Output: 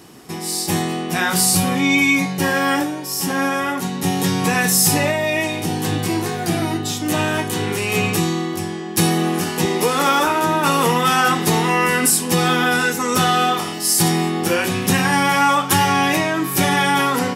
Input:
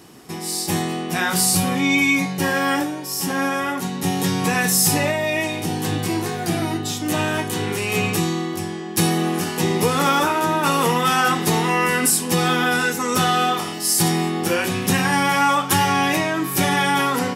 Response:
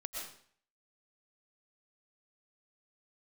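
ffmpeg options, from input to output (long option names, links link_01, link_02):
-filter_complex "[0:a]asettb=1/sr,asplit=3[link_01][link_02][link_03];[link_01]atrim=end=9.654[link_04];[link_02]atrim=start=9.65:end=10.27,asetpts=PTS-STARTPTS,afade=type=in:duration=0.004:curve=qsin,afade=type=out:start_time=0.616:duration=0.004:curve=qsin,highpass=240[link_05];[link_03]atrim=start=10.266[link_06];[link_04][link_05]acrossfade=duration=0.004:curve1=hsin:curve2=qsin[link_07];[link_07][link_06]acrossfade=duration=0.004:curve1=qsin:curve2=hsin,volume=2dB"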